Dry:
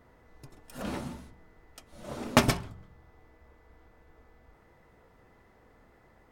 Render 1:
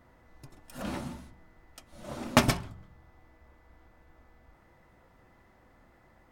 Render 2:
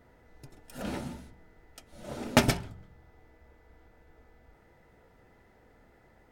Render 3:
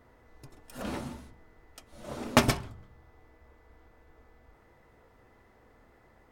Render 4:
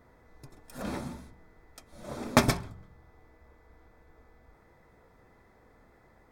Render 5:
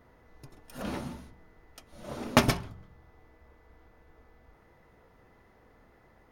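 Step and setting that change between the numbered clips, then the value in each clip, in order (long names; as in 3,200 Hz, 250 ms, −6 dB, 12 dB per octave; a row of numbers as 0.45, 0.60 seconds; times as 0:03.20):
notch filter, centre frequency: 440, 1,100, 170, 2,900, 7,800 Hertz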